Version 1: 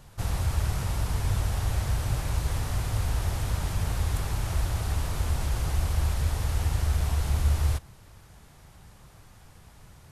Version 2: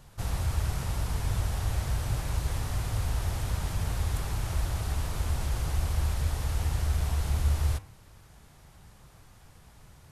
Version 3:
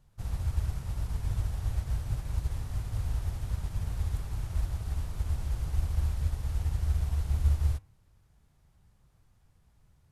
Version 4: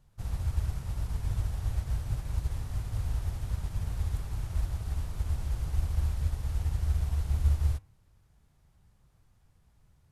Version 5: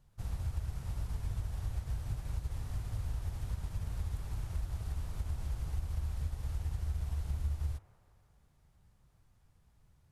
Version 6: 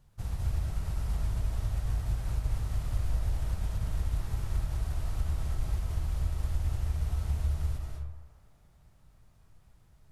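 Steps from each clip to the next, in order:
de-hum 97.41 Hz, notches 30; trim -2 dB
bass shelf 220 Hz +9 dB; upward expansion 1.5:1, over -34 dBFS; trim -6.5 dB
no audible change
compression 3:1, threshold -30 dBFS, peak gain reduction 8.5 dB; feedback echo behind a band-pass 168 ms, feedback 66%, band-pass 890 Hz, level -13.5 dB; trim -2.5 dB
reverberation RT60 0.75 s, pre-delay 163 ms, DRR 0.5 dB; trim +3.5 dB

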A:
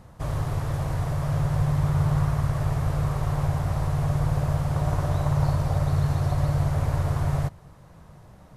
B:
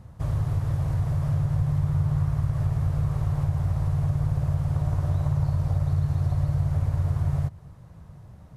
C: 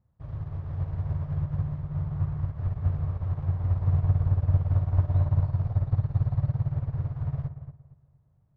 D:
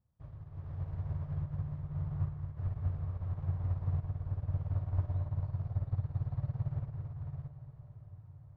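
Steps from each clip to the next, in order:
peaking EQ 89 Hz +11 dB 2.2 oct; compression 2.5:1, threshold -17 dBFS, peak gain reduction 6.5 dB; trim -5 dB
distance through air 260 m; filtered feedback delay 232 ms, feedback 58%, low-pass 1.6 kHz, level -4 dB; upward expansion 2.5:1, over -34 dBFS; trim +1.5 dB
random-step tremolo; echo that smears into a reverb 1208 ms, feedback 51%, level -16 dB; trim -6.5 dB

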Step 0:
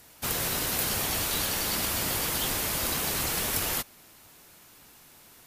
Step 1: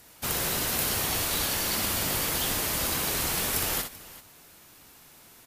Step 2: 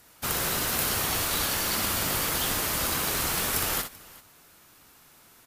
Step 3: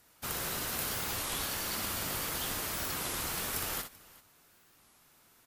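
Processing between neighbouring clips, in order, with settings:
multi-tap echo 61/386 ms -7/-18 dB
peaking EQ 1.3 kHz +4 dB 0.69 oct; in parallel at -4.5 dB: crossover distortion -38 dBFS; on the sum: trim -3 dB
warped record 33 1/3 rpm, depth 250 cents; trim -8 dB

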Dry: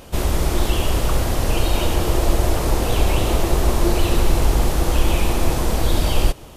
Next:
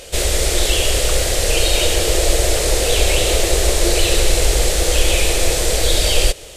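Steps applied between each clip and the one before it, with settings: ten-band graphic EQ 125 Hz -6 dB, 250 Hz -11 dB, 500 Hz +11 dB, 1 kHz -10 dB, 2 kHz +7 dB, 4 kHz +7 dB, 8 kHz +12 dB; trim +1 dB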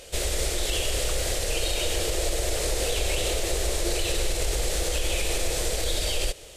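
peak limiter -7.5 dBFS, peak gain reduction 6 dB; trim -8.5 dB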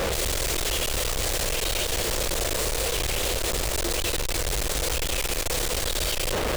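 Schmitt trigger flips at -44.5 dBFS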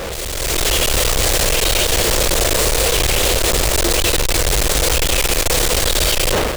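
level rider gain up to 10.5 dB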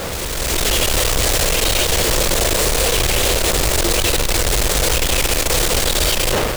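added noise pink -27 dBFS; trim -1 dB

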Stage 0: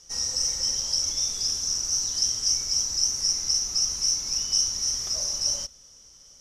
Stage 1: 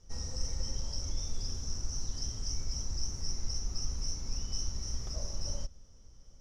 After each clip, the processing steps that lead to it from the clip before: tilt EQ -4 dB/octave; trim -7 dB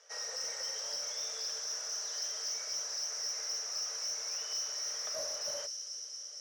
rippled Chebyshev high-pass 430 Hz, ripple 9 dB; feedback echo behind a high-pass 229 ms, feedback 80%, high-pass 5.1 kHz, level -5 dB; overdrive pedal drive 13 dB, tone 7.1 kHz, clips at -35 dBFS; trim +7.5 dB

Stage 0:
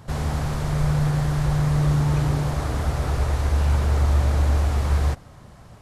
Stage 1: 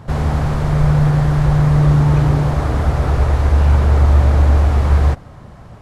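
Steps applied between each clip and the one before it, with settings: treble shelf 3.6 kHz -11.5 dB; trim +8 dB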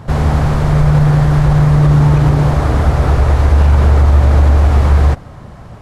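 loudness maximiser +5.5 dB; trim -1 dB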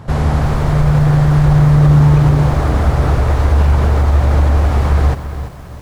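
bit-crushed delay 339 ms, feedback 35%, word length 6-bit, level -11 dB; trim -1.5 dB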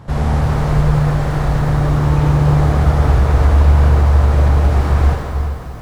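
plate-style reverb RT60 2.4 s, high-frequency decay 0.8×, DRR -1 dB; trim -4.5 dB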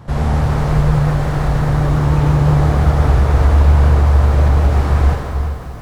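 vibrato 5.7 Hz 42 cents

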